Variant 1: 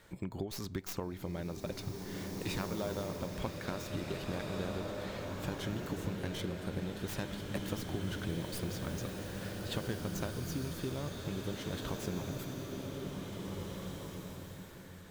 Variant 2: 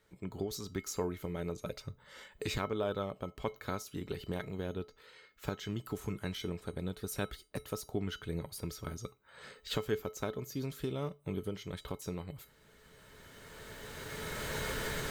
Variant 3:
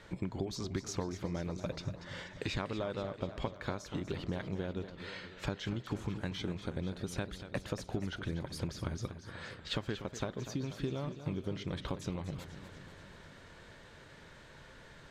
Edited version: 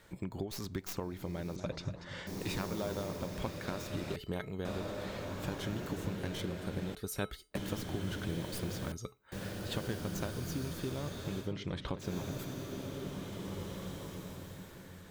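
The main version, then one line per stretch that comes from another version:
1
1.56–2.27 s: from 3
4.16–4.65 s: from 2
6.95–7.55 s: from 2
8.92–9.32 s: from 2
11.45–12.05 s: from 3, crossfade 0.16 s

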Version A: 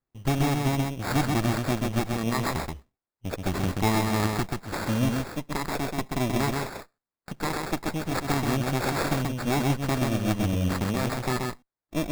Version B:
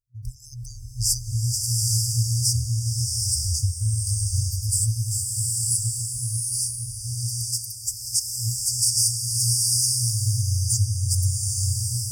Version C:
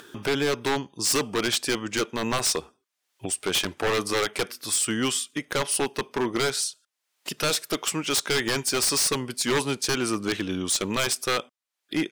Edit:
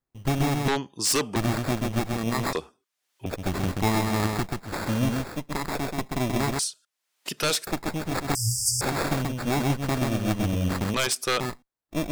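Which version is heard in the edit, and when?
A
0.68–1.36 s: from C
2.53–3.26 s: from C
6.59–7.67 s: from C
8.35–8.81 s: from B
10.94–11.40 s: from C

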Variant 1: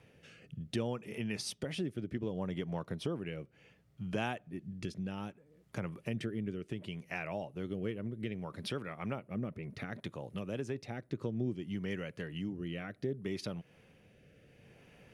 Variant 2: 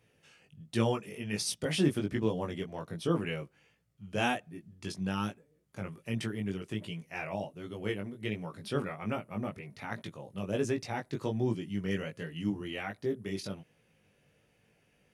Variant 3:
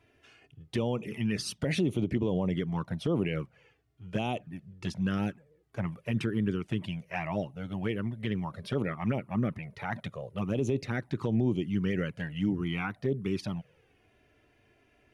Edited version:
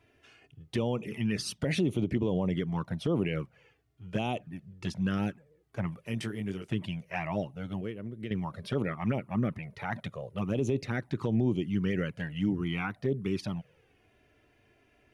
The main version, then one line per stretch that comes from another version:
3
6.07–6.68 s: from 2
7.81–8.31 s: from 1

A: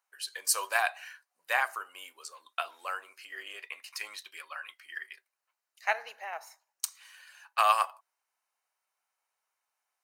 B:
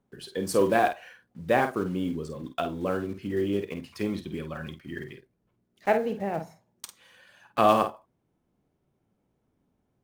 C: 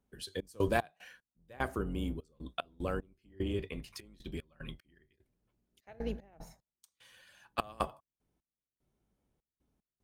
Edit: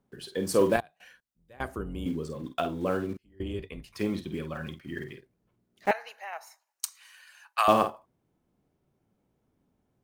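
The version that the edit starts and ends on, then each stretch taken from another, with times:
B
0.76–2.06 s: from C
3.17–3.95 s: from C
5.91–7.68 s: from A

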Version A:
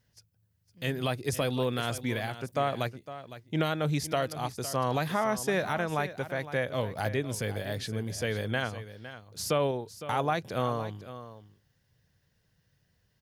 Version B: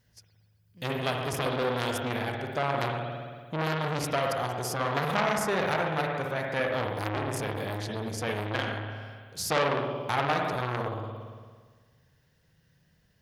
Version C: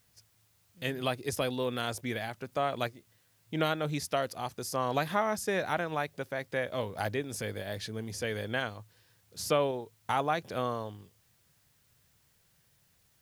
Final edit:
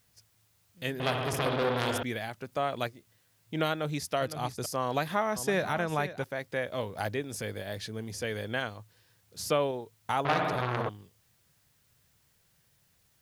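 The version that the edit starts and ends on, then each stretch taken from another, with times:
C
1.00–2.03 s: from B
4.21–4.66 s: from A
5.36–6.24 s: from A
10.25–10.89 s: from B

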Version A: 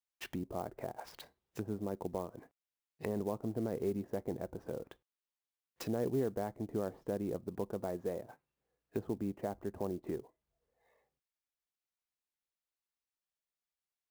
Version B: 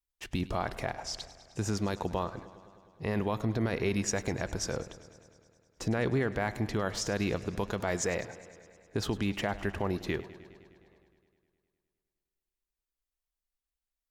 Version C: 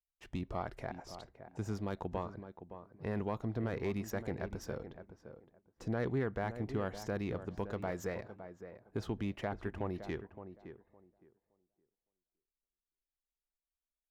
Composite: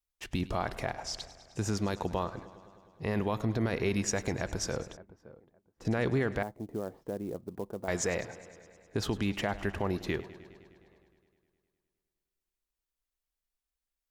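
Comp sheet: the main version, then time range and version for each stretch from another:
B
4.97–5.85 s: from C
6.43–7.88 s: from A

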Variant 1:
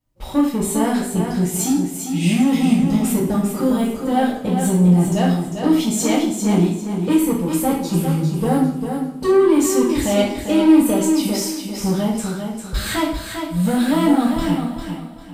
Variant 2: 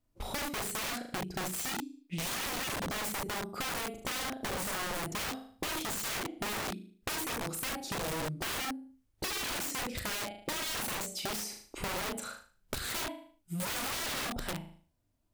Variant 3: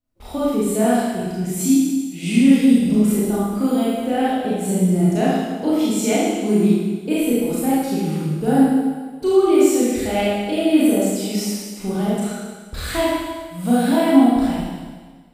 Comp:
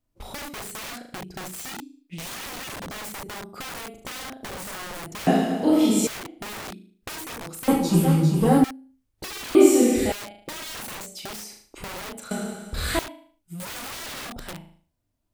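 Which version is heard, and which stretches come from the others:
2
5.27–6.07 s: from 3
7.68–8.64 s: from 1
9.55–10.12 s: from 3
12.31–12.99 s: from 3

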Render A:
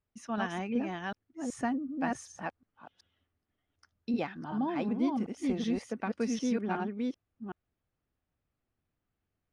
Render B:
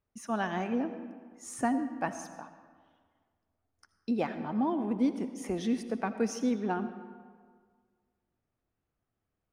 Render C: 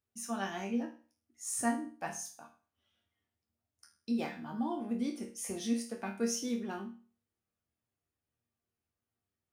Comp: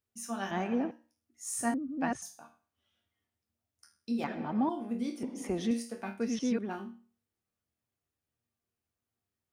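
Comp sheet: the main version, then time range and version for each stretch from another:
C
0.51–0.91 s: from B
1.74–2.22 s: from A
4.24–4.69 s: from B
5.23–5.71 s: from B
6.22–6.67 s: from A, crossfade 0.24 s

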